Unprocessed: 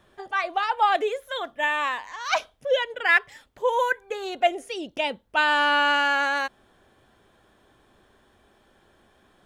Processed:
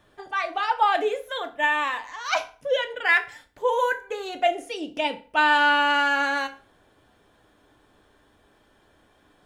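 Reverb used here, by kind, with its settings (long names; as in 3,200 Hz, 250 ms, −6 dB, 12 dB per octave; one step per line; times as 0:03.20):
feedback delay network reverb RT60 0.41 s, low-frequency decay 0.95×, high-frequency decay 0.8×, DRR 6 dB
level −1 dB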